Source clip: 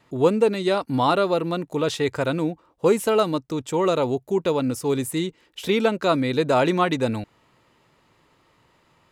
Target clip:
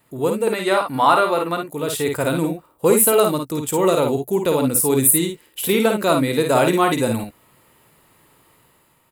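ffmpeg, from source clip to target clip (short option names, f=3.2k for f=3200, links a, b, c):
-filter_complex "[0:a]asettb=1/sr,asplit=3[a][b][c];[a]atrim=end=0.474[d];[b]atrim=start=0.47:end=1.61,asetpts=PTS-STARTPTS,afade=t=in:d=0.004:c=qsin,afade=t=out:st=1.136:d=0.004:c=qsin,equalizer=f=1.4k:t=o:w=2.8:g=13[e];[c]atrim=start=1.606[f];[d][e]acrossfade=d=0.004:c1=hsin:c2=qsin[g];[g][f]acrossfade=d=0.004:c1=qsin:c2=hsin,dynaudnorm=f=150:g=7:m=5.5dB,aexciter=amount=6.5:drive=7.5:freq=8.4k,asplit=2[h][i];[i]aecho=0:1:53|67:0.562|0.224[j];[h][j]amix=inputs=2:normalize=0,volume=-2.5dB"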